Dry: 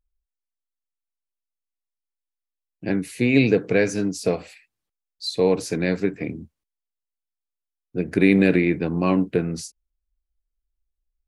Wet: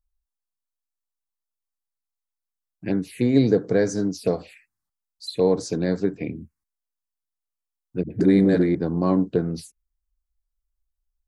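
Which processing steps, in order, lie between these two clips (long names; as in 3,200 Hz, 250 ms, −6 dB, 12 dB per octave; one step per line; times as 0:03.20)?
0:08.03–0:08.75: all-pass dispersion highs, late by 75 ms, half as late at 300 Hz
phaser swept by the level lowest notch 410 Hz, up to 2,600 Hz, full sweep at −19.5 dBFS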